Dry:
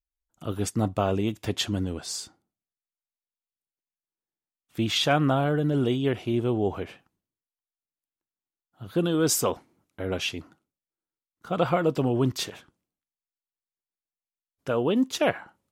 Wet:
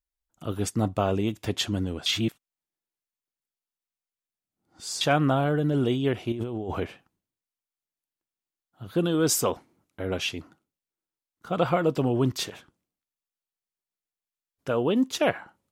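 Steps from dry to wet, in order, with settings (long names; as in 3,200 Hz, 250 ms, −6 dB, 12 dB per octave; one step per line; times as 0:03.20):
0:02.06–0:05.01: reverse
0:06.32–0:06.87: compressor whose output falls as the input rises −31 dBFS, ratio −1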